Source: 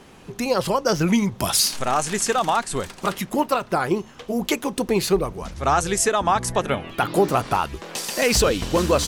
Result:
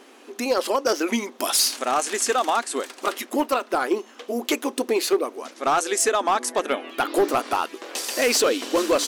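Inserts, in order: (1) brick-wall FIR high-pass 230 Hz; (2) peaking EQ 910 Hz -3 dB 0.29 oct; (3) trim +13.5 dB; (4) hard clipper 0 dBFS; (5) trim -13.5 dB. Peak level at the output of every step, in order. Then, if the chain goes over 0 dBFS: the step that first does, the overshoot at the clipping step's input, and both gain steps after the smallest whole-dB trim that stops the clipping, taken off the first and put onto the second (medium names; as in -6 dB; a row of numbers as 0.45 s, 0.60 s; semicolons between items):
-7.0 dBFS, -7.5 dBFS, +6.0 dBFS, 0.0 dBFS, -13.5 dBFS; step 3, 6.0 dB; step 3 +7.5 dB, step 5 -7.5 dB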